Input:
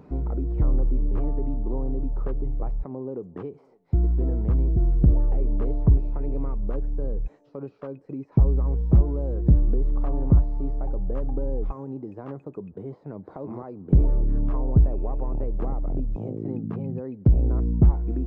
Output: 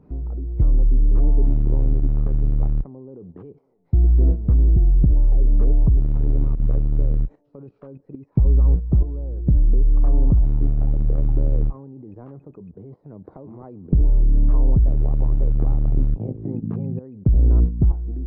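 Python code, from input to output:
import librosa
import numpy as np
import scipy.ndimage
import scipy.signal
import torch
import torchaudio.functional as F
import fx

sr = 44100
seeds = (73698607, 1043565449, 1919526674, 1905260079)

y = fx.tilt_eq(x, sr, slope=-2.5)
y = fx.level_steps(y, sr, step_db=13)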